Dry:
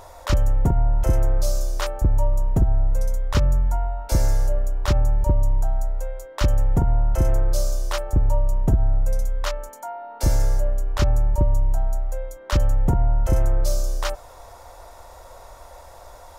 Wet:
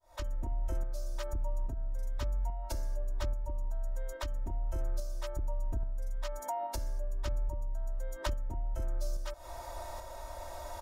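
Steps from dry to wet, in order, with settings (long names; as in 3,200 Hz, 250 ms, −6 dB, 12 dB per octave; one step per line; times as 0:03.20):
fade in at the beginning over 0.97 s
comb filter 3.2 ms, depth 90%
downward compressor 6 to 1, threshold −31 dBFS, peak gain reduction 20.5 dB
phase-vocoder stretch with locked phases 0.66×
shaped tremolo saw up 1.2 Hz, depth 40%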